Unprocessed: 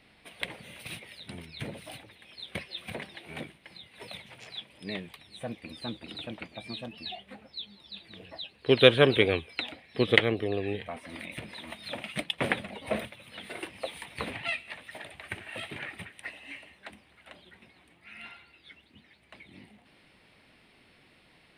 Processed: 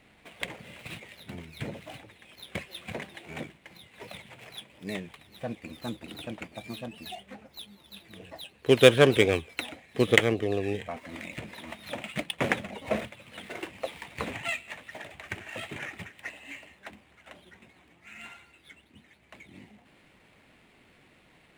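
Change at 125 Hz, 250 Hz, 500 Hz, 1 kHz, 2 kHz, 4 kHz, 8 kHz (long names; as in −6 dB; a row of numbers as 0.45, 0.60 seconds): +2.0, +2.0, +2.0, +1.5, +0.5, −2.0, +7.5 decibels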